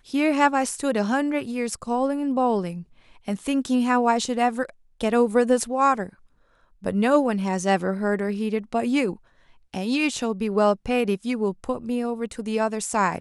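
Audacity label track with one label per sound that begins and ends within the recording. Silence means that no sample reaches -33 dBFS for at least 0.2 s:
3.280000	4.700000	sound
5.010000	6.090000	sound
6.840000	9.130000	sound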